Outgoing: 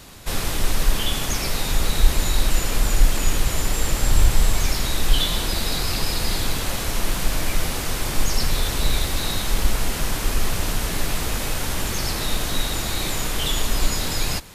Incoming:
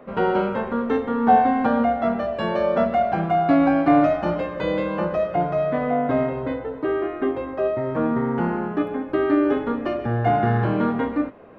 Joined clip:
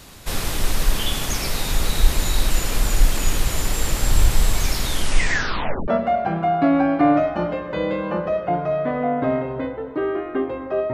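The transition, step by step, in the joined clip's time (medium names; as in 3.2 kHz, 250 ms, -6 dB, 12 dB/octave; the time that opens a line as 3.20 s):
outgoing
4.85 s: tape stop 1.03 s
5.88 s: go over to incoming from 2.75 s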